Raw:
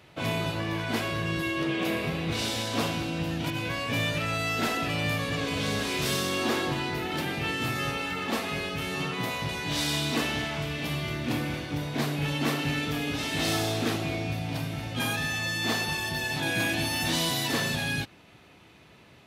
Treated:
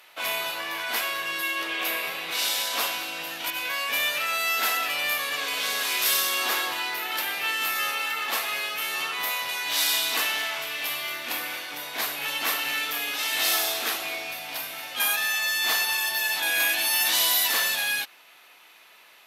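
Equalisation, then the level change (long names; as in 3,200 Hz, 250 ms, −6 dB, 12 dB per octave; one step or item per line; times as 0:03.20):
high-pass filter 930 Hz 12 dB per octave
parametric band 13,000 Hz +14 dB 0.47 octaves
+5.0 dB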